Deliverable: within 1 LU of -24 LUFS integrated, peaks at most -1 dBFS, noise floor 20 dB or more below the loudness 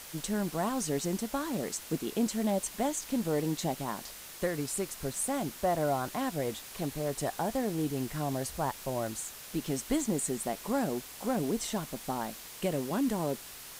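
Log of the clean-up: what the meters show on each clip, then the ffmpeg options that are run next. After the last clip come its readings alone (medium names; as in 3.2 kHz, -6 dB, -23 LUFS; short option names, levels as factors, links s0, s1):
noise floor -47 dBFS; noise floor target -53 dBFS; loudness -33.0 LUFS; peak level -18.0 dBFS; loudness target -24.0 LUFS
-> -af "afftdn=nr=6:nf=-47"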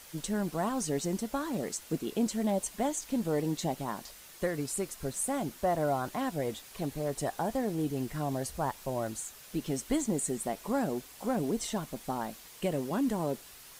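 noise floor -52 dBFS; noise floor target -54 dBFS
-> -af "afftdn=nr=6:nf=-52"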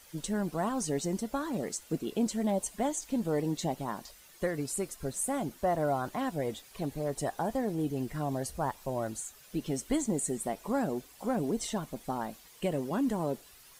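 noise floor -56 dBFS; loudness -33.5 LUFS; peak level -18.5 dBFS; loudness target -24.0 LUFS
-> -af "volume=2.99"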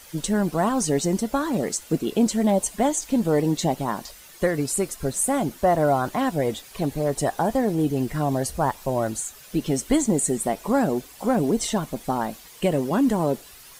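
loudness -24.0 LUFS; peak level -9.0 dBFS; noise floor -47 dBFS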